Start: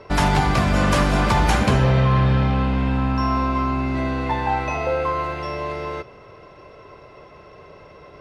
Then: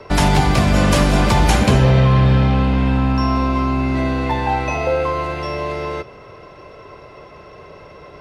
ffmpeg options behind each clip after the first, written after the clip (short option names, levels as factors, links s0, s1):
-filter_complex "[0:a]highshelf=f=8300:g=4,acrossover=split=370|960|1700[s0][s1][s2][s3];[s2]acompressor=threshold=0.01:ratio=6[s4];[s0][s1][s4][s3]amix=inputs=4:normalize=0,volume=1.68"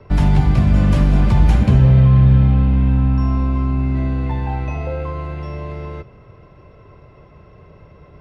-af "bass=f=250:g=14,treble=f=4000:g=-8,volume=0.316"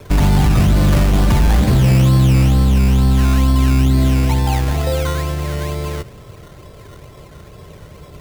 -af "apsyclip=5.01,acrusher=samples=14:mix=1:aa=0.000001:lfo=1:lforange=8.4:lforate=2.2,volume=0.398"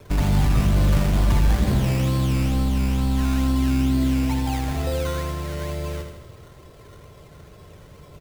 -af "aecho=1:1:80|160|240|320|400|480|560:0.447|0.255|0.145|0.0827|0.0472|0.0269|0.0153,volume=0.398"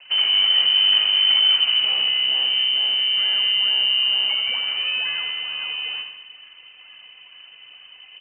-af "lowpass=f=2600:t=q:w=0.5098,lowpass=f=2600:t=q:w=0.6013,lowpass=f=2600:t=q:w=0.9,lowpass=f=2600:t=q:w=2.563,afreqshift=-3100"